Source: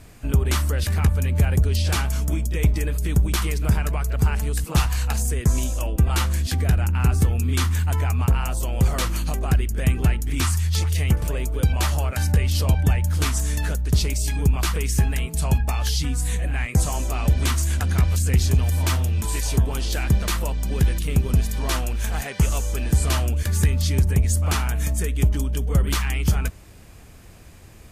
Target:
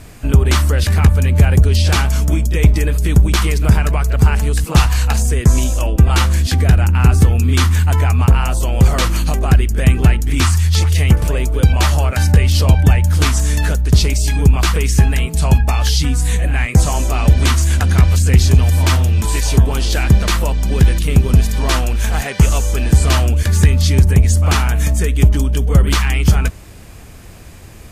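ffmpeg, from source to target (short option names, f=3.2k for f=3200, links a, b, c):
-filter_complex "[0:a]acrossover=split=7200[a][b];[b]acompressor=threshold=-37dB:ratio=4:attack=1:release=60[c];[a][c]amix=inputs=2:normalize=0,volume=8.5dB"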